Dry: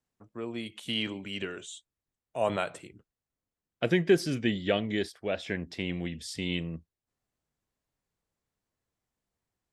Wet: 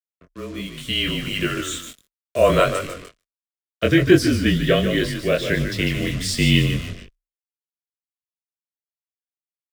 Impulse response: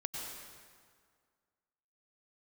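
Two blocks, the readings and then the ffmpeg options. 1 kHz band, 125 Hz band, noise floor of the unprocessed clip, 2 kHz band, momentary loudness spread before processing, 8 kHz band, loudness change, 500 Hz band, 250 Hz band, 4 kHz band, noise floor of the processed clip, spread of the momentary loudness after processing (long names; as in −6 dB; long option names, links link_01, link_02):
+10.5 dB, +14.5 dB, below −85 dBFS, +12.0 dB, 16 LU, +14.5 dB, +11.5 dB, +10.0 dB, +11.0 dB, +12.0 dB, below −85 dBFS, 17 LU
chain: -filter_complex "[0:a]equalizer=frequency=300:width_type=o:width=1.2:gain=-2,asplit=5[link_01][link_02][link_03][link_04][link_05];[link_02]adelay=149,afreqshift=-38,volume=-8.5dB[link_06];[link_03]adelay=298,afreqshift=-76,volume=-17.1dB[link_07];[link_04]adelay=447,afreqshift=-114,volume=-25.8dB[link_08];[link_05]adelay=596,afreqshift=-152,volume=-34.4dB[link_09];[link_01][link_06][link_07][link_08][link_09]amix=inputs=5:normalize=0,adynamicequalizer=threshold=0.00282:dfrequency=2400:dqfactor=4.1:tfrequency=2400:tqfactor=4.1:attack=5:release=100:ratio=0.375:range=2:mode=cutabove:tftype=bell,acontrast=37,acrusher=bits=6:mix=0:aa=0.5,afreqshift=-31,asuperstop=centerf=840:order=4:qfactor=2.9,dynaudnorm=framelen=320:gausssize=7:maxgain=11.5dB,flanger=delay=20:depth=4.5:speed=1.4,volume=2.5dB"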